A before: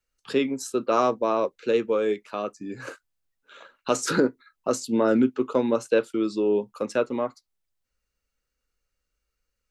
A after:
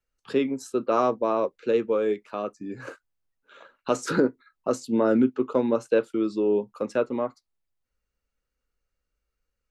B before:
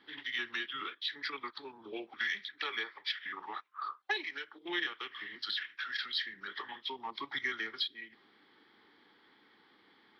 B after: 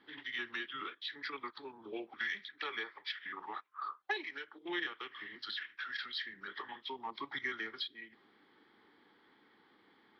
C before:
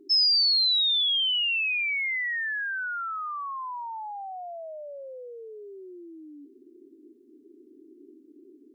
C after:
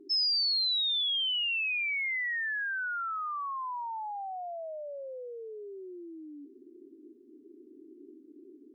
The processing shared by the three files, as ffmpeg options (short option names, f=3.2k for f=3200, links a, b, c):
-af "highshelf=f=2.4k:g=-8"